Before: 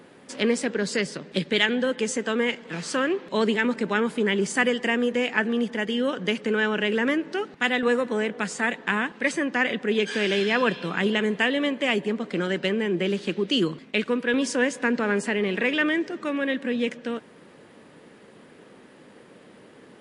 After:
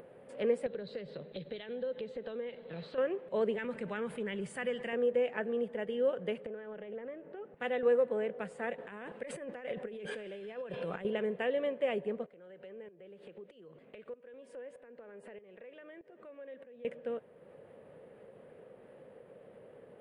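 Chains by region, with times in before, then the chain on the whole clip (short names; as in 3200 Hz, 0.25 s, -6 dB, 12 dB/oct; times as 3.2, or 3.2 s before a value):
0.66–2.98 compressor, threshold -30 dBFS + synth low-pass 4000 Hz, resonance Q 14 + tilt -1.5 dB/oct
3.58–4.93 bell 480 Hz -10.5 dB 2.1 oct + fast leveller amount 50%
6.46–7.57 compressor 8:1, threshold -29 dBFS + air absorption 350 m + Doppler distortion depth 0.15 ms
8.78–11.05 negative-ratio compressor -32 dBFS + high shelf 6400 Hz +8.5 dB
12.26–16.85 tone controls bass -5 dB, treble -2 dB + compressor, threshold -35 dBFS + tremolo saw up 1.6 Hz, depth 80%
whole clip: EQ curve 130 Hz 0 dB, 300 Hz -10 dB, 520 Hz +7 dB, 940 Hz -6 dB, 2800 Hz -10 dB, 6000 Hz -27 dB, 9400 Hz -12 dB; upward compressor, threshold -40 dBFS; gain -8 dB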